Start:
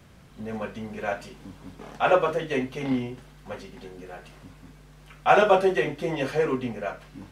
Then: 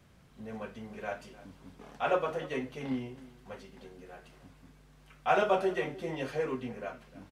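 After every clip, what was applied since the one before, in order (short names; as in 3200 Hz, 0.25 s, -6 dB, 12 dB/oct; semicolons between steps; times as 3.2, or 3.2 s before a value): outdoor echo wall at 52 m, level -18 dB; gain -8.5 dB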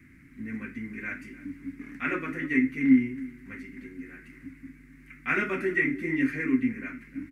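EQ curve 200 Hz 0 dB, 280 Hz +15 dB, 470 Hz -15 dB, 750 Hz -24 dB, 2100 Hz +14 dB, 3200 Hz -14 dB, 11000 Hz -2 dB; gain +4 dB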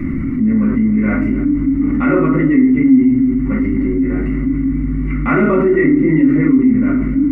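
polynomial smoothing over 65 samples; shoebox room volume 350 m³, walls furnished, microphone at 2.4 m; fast leveller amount 70%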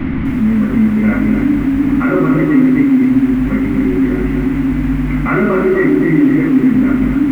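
in parallel at 0 dB: limiter -10.5 dBFS, peak gain reduction 8.5 dB; on the sum: band noise 330–2300 Hz -31 dBFS; lo-fi delay 0.252 s, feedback 35%, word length 6-bit, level -7 dB; gain -4 dB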